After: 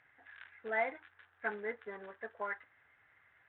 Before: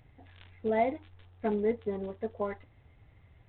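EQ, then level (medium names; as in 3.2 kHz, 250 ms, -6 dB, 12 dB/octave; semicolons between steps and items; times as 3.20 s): band-pass filter 1.6 kHz, Q 4.7; +12.0 dB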